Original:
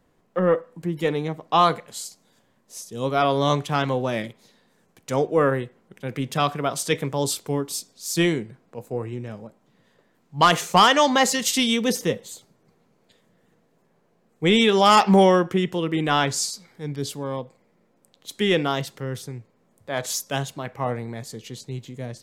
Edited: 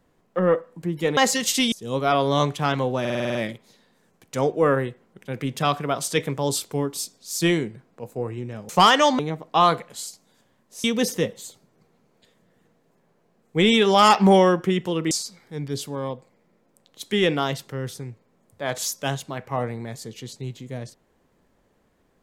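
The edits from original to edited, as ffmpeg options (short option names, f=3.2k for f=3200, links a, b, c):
-filter_complex "[0:a]asplit=14[a][b][c][d][e][f][g][h][i][j][k][l][m][n];[a]atrim=end=1.172[o];[b]atrim=start=11.158:end=11.712[p];[c]atrim=start=2.818:end=4.152[q];[d]atrim=start=4.098:end=4.152[r];[e]atrim=start=4.098:end=4.152[s];[f]atrim=start=4.098:end=4.152[t];[g]atrim=start=4.098:end=4.152[u];[h]atrim=start=4.098:end=4.152[v];[i]atrim=start=4.098:end=4.152[w];[j]atrim=start=4.098:end=9.442[x];[k]atrim=start=10.658:end=11.162[y];[l]atrim=start=1.168:end=2.822[z];[m]atrim=start=11.708:end=15.982[aa];[n]atrim=start=16.388[ab];[o][p]acrossfade=d=0.004:c1=hsin:c2=hsin[ac];[ac][q]acrossfade=d=0.004:c1=hsin:c2=hsin[ad];[ad][r]acrossfade=d=0.004:c1=hsin:c2=hsin[ae];[ae][s]acrossfade=d=0.004:c1=hsin:c2=hsin[af];[af][t]acrossfade=d=0.004:c1=hsin:c2=hsin[ag];[ag][u]acrossfade=d=0.004:c1=hsin:c2=hsin[ah];[ah][v]acrossfade=d=0.004:c1=hsin:c2=hsin[ai];[ai][w]acrossfade=d=0.004:c1=hsin:c2=hsin[aj];[aj][x]acrossfade=d=0.004:c1=hsin:c2=hsin[ak];[ak][y]acrossfade=d=0.004:c1=hsin:c2=hsin[al];[al][z]acrossfade=d=0.004:c1=hsin:c2=hsin[am];[am][aa]acrossfade=d=0.004:c1=hsin:c2=hsin[an];[an][ab]acrossfade=d=0.004:c1=hsin:c2=hsin"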